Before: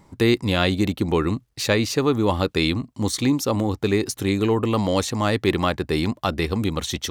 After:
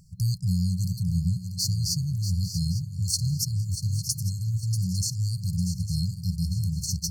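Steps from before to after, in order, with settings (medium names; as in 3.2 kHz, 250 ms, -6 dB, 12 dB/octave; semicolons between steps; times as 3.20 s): FFT band-reject 190–4200 Hz; shuffle delay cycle 851 ms, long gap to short 3:1, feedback 36%, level -10 dB; trim +1.5 dB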